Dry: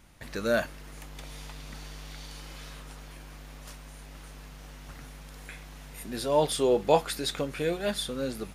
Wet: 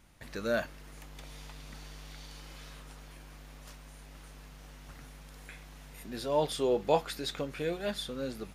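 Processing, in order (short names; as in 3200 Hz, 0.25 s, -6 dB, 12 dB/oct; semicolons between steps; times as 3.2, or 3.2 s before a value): dynamic EQ 9700 Hz, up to -6 dB, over -55 dBFS, Q 1.5; gain -4.5 dB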